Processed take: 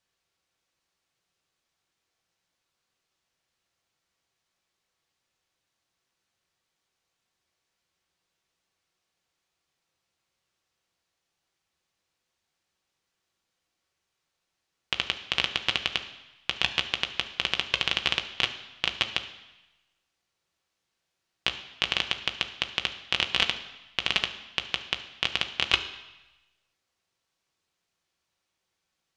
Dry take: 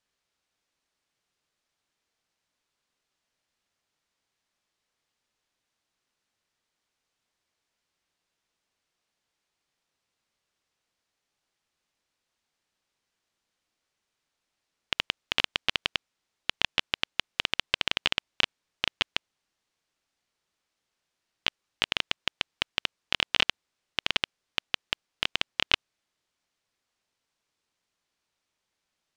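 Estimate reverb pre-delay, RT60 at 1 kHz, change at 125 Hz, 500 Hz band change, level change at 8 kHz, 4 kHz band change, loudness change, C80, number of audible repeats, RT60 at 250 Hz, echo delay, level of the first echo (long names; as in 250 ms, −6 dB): 3 ms, 1.1 s, +3.5 dB, +1.0 dB, +1.5 dB, +1.5 dB, +1.5 dB, 13.5 dB, no echo audible, 0.95 s, no echo audible, no echo audible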